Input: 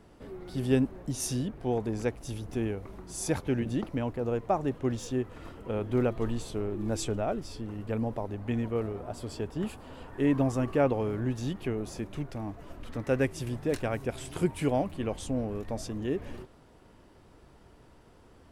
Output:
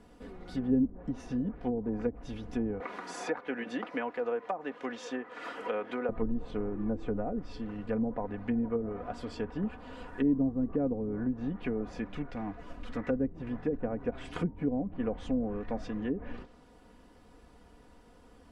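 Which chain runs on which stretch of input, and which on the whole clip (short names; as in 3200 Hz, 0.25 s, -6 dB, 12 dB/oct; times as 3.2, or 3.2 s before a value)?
2.8–6.09 HPF 440 Hz + three-band squash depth 70%
whole clip: treble ducked by the level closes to 340 Hz, closed at -25 dBFS; comb 4.1 ms, depth 60%; dynamic EQ 1700 Hz, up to +7 dB, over -54 dBFS, Q 1.1; gain -2 dB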